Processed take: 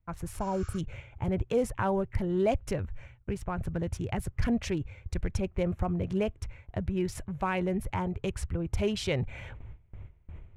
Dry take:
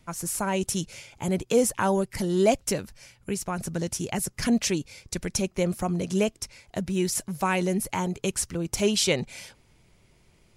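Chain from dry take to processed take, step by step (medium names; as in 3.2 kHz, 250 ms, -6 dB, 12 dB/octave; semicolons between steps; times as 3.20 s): local Wiener filter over 9 samples; resonant low shelf 130 Hz +12 dB, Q 1.5; gate with hold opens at -39 dBFS; in parallel at -2 dB: peak limiter -18.5 dBFS, peak gain reduction 9.5 dB; on the sum: spectral replace 0.44–0.76 s, 1.1–7.5 kHz before; reverse; upward compressor, threshold -26 dBFS; reverse; tone controls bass +1 dB, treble -13 dB; trim -8 dB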